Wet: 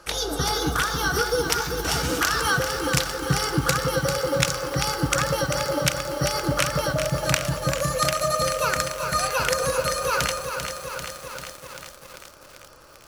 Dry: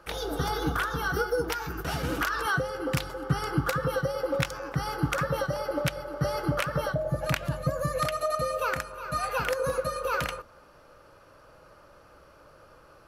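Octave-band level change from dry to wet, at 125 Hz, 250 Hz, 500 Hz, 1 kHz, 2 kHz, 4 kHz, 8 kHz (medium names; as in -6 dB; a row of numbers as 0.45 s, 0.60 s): +3.5 dB, +4.0 dB, +4.0 dB, +5.0 dB, +6.0 dB, +11.5 dB, +15.0 dB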